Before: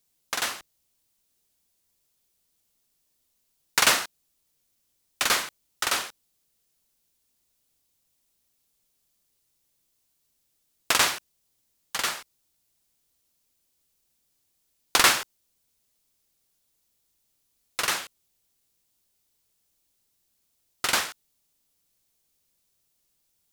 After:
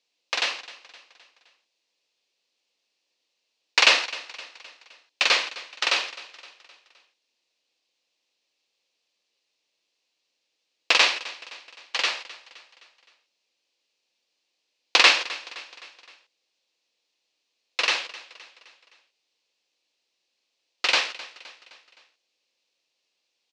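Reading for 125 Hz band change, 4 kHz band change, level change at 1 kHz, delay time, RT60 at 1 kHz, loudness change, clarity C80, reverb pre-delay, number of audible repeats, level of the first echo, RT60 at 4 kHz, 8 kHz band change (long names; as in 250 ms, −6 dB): below −15 dB, +5.0 dB, 0.0 dB, 259 ms, no reverb audible, +3.0 dB, no reverb audible, no reverb audible, 3, −18.0 dB, no reverb audible, −6.0 dB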